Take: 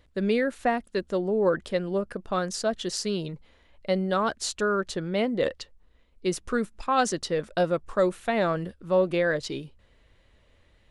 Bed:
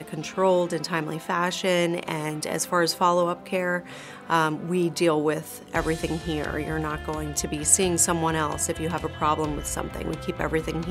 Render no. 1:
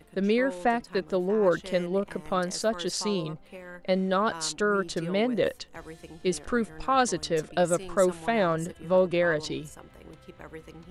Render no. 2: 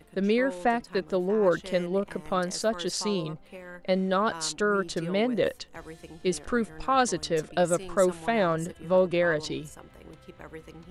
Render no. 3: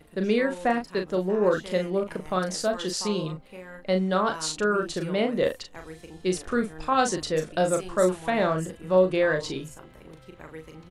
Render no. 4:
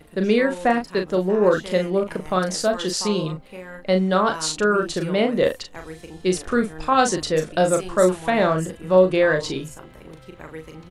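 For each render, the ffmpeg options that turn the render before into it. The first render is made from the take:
-filter_complex "[1:a]volume=-18dB[a];[0:a][a]amix=inputs=2:normalize=0"
-af anull
-filter_complex "[0:a]asplit=2[a][b];[b]adelay=38,volume=-6dB[c];[a][c]amix=inputs=2:normalize=0"
-af "volume=5dB"

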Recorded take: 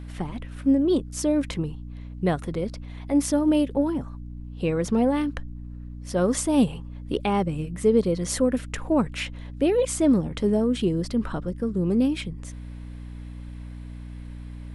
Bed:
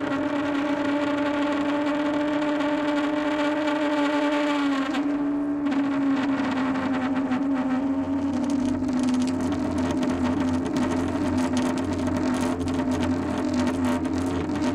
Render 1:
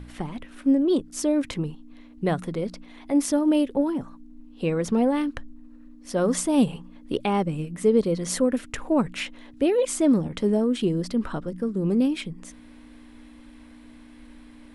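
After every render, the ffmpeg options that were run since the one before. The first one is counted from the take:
-af "bandreject=f=60:t=h:w=4,bandreject=f=120:t=h:w=4,bandreject=f=180:t=h:w=4"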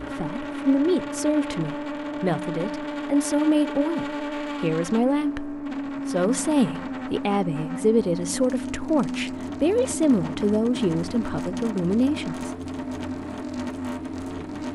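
-filter_complex "[1:a]volume=-7dB[a];[0:a][a]amix=inputs=2:normalize=0"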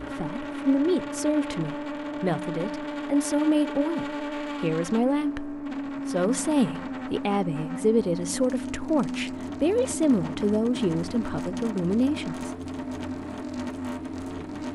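-af "volume=-2dB"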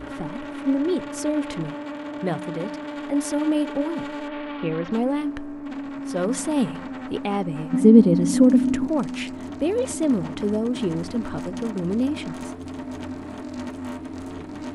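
-filter_complex "[0:a]asettb=1/sr,asplit=3[a][b][c];[a]atrim=end=1.704[d];[b]atrim=start=1.7:end=2.97,asetpts=PTS-STARTPTS,afade=t=in:d=0.004:c=qsin,afade=t=out:st=1.266:d=0.004:c=qsin,highpass=40[e];[c]atrim=start=2.966[f];[d][e]acrossfade=d=0.004:c1=hsin:c2=qsin[g];[g][f]acrossfade=d=0.004:c1=qsin:c2=hsin,asettb=1/sr,asplit=3[h][i][j];[h]atrim=end=4.284[k];[i]atrim=start=4.28:end=4.92,asetpts=PTS-STARTPTS,afade=t=in:d=0.004:c=qsin,afade=t=out:st=0.636:d=0.004:c=qsin,lowpass=f=3.7k:w=0.5412,lowpass=f=3.7k:w=1.3066[l];[j]atrim=start=4.916[m];[k][l]acrossfade=d=0.004:c1=hsin:c2=qsin[n];[n][m]acrossfade=d=0.004:c1=qsin:c2=hsin,asettb=1/sr,asplit=3[o][p][q];[o]atrim=end=7.734[r];[p]atrim=start=7.73:end=8.87,asetpts=PTS-STARTPTS,afade=t=in:d=0.004:c=qsin,afade=t=out:st=1.136:d=0.004:c=qsin,equalizer=f=220:w=1.2:g=14.5[s];[q]atrim=start=8.866[t];[r][s]acrossfade=d=0.004:c1=hsin:c2=qsin[u];[u][t]acrossfade=d=0.004:c1=qsin:c2=hsin"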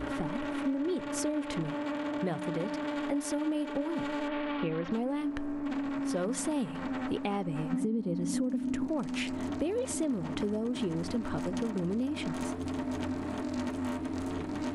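-af "alimiter=limit=-10.5dB:level=0:latency=1:release=236,acompressor=threshold=-29dB:ratio=6"

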